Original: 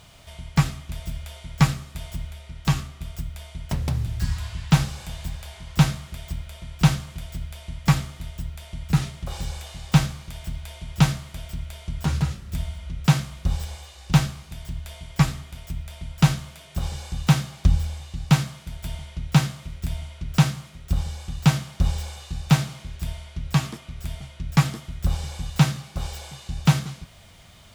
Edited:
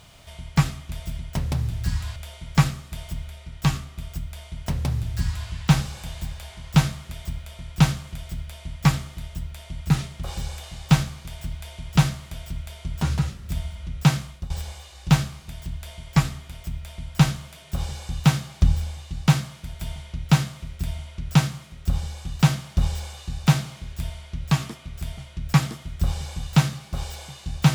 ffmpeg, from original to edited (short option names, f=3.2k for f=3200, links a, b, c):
-filter_complex "[0:a]asplit=4[a][b][c][d];[a]atrim=end=1.192[e];[b]atrim=start=3.548:end=4.522[f];[c]atrim=start=1.188:end=13.53,asetpts=PTS-STARTPTS,afade=t=out:st=12.082:d=0.26:silence=0.125893[g];[d]atrim=start=13.53,asetpts=PTS-STARTPTS,afade=t=in:d=0.004:c=hsin:silence=0.125893[h];[e][f]acrossfade=d=0.004:c1=hsin:c2=hsin[i];[g][h]concat=n=2:v=0:a=1[j];[i][j]acrossfade=d=0.004:c1=hsin:c2=hsin"